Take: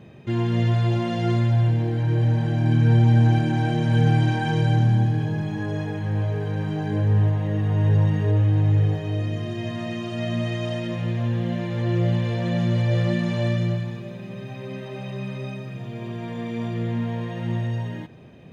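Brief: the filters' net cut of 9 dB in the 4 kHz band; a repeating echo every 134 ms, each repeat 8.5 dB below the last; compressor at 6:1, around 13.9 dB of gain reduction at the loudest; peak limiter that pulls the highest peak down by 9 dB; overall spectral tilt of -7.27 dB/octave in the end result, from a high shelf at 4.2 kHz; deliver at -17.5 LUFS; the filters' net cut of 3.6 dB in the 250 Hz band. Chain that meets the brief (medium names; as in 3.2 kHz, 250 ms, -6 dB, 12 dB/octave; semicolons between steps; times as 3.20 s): peaking EQ 250 Hz -5.5 dB; peaking EQ 4 kHz -8.5 dB; treble shelf 4.2 kHz -8.5 dB; compression 6:1, threshold -30 dBFS; peak limiter -32 dBFS; feedback delay 134 ms, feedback 38%, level -8.5 dB; trim +21.5 dB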